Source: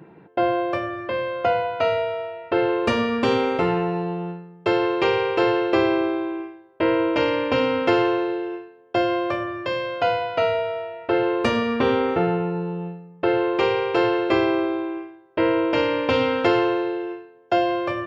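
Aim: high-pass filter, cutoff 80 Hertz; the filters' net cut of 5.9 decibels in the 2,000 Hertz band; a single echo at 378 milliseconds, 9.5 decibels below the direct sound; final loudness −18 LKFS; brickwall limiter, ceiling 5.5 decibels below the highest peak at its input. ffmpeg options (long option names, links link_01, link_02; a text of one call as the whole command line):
ffmpeg -i in.wav -af "highpass=80,equalizer=frequency=2000:width_type=o:gain=-8,alimiter=limit=-13dB:level=0:latency=1,aecho=1:1:378:0.335,volume=5.5dB" out.wav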